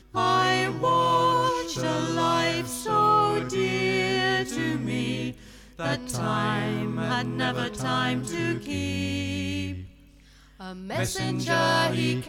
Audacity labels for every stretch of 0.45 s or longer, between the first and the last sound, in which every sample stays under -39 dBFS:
9.860000	10.600000	silence